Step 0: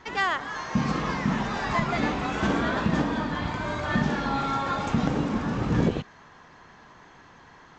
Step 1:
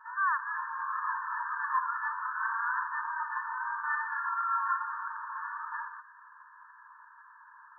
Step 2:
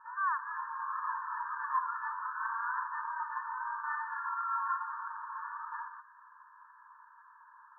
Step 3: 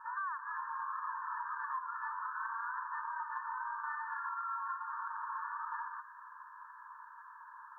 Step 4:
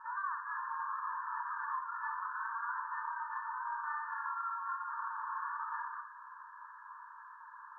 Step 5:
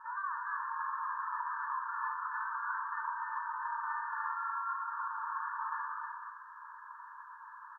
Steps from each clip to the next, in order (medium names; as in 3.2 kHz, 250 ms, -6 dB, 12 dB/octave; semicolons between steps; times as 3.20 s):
FFT band-pass 890–1800 Hz
low-pass 1.2 kHz 12 dB/octave
compression 6:1, threshold -42 dBFS, peak gain reduction 14.5 dB; trim +5 dB
distance through air 60 m; Schroeder reverb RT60 0.35 s, combs from 27 ms, DRR 5 dB
delay 295 ms -3 dB